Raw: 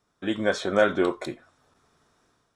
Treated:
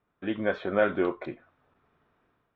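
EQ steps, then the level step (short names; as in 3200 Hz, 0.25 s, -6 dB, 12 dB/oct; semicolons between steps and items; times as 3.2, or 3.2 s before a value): Chebyshev low-pass 2700 Hz, order 3; -3.0 dB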